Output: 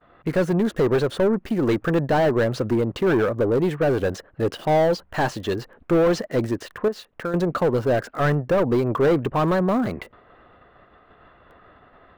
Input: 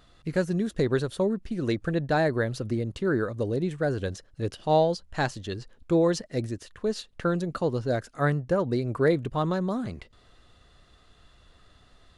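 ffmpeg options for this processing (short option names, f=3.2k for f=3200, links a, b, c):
-filter_complex "[0:a]agate=range=-33dB:threshold=-52dB:ratio=3:detection=peak,asettb=1/sr,asplit=3[a][b][c];[a]atrim=end=6.884[d];[b]atrim=start=6.88:end=7.34,asetpts=PTS-STARTPTS,afade=t=in:d=0.004:c=qsin,afade=t=out:st=0.456:d=0.004:c=qsin,acompressor=threshold=-47dB:ratio=2[e];[c]atrim=start=7.336[f];[d][e]acrossfade=d=0.004:c1=hsin:c2=qsin[g];[g][f]acrossfade=d=0.004:c1=qsin:c2=hsin,asplit=2[h][i];[i]highpass=f=720:p=1,volume=26dB,asoftclip=type=tanh:threshold=-10dB[j];[h][j]amix=inputs=2:normalize=0,lowpass=f=1k:p=1,volume=-6dB,acrossover=split=2600[k][l];[l]acrusher=bits=7:mix=0:aa=0.000001[m];[k][m]amix=inputs=2:normalize=0"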